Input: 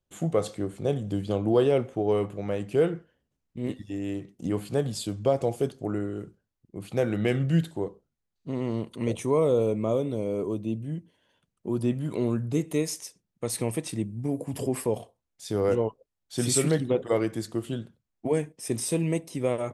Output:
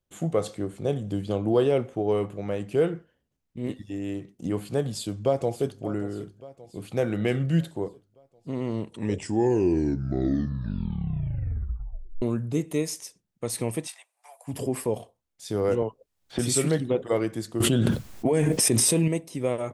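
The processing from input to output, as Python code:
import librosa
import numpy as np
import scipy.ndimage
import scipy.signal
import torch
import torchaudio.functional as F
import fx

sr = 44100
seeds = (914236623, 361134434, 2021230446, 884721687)

y = fx.echo_throw(x, sr, start_s=4.9, length_s=0.93, ms=580, feedback_pct=60, wet_db=-16.5)
y = fx.steep_highpass(y, sr, hz=730.0, slope=48, at=(13.86, 14.47), fade=0.02)
y = fx.band_squash(y, sr, depth_pct=100, at=(15.82, 16.39))
y = fx.env_flatten(y, sr, amount_pct=100, at=(17.6, 19.08))
y = fx.edit(y, sr, fx.tape_stop(start_s=8.72, length_s=3.5), tone=tone)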